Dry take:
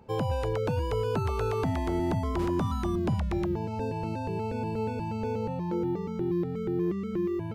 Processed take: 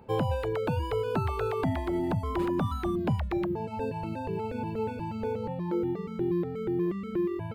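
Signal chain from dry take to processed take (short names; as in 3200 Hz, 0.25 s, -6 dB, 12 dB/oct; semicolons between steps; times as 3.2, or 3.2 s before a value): median filter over 5 samples; bell 5800 Hz -9.5 dB 0.58 oct; de-hum 211.5 Hz, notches 6; reverb removal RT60 1.7 s; low shelf 130 Hz -3 dB; gain +3 dB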